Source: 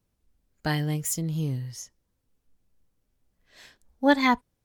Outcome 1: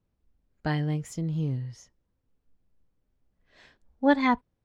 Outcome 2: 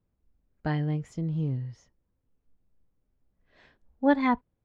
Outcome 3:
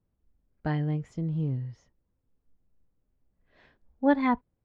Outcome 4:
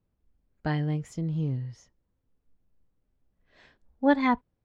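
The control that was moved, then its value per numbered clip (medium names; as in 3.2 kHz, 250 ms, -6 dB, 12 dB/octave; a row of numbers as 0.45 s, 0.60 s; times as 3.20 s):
tape spacing loss, at 10 kHz: 20 dB, 37 dB, 46 dB, 29 dB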